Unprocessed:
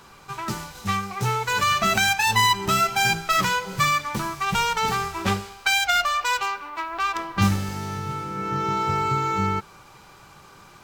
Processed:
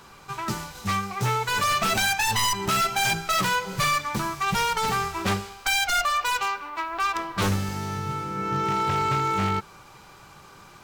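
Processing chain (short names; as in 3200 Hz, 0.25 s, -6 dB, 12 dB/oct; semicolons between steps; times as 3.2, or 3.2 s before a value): wavefolder -17.5 dBFS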